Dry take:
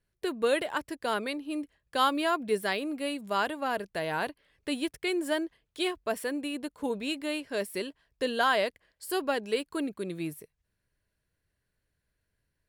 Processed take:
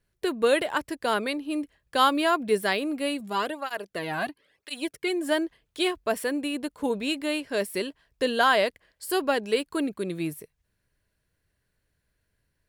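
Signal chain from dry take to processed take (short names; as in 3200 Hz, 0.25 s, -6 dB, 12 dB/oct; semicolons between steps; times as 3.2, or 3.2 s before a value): 3.2–5.29 tape flanging out of phase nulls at 1 Hz, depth 2.3 ms; gain +4.5 dB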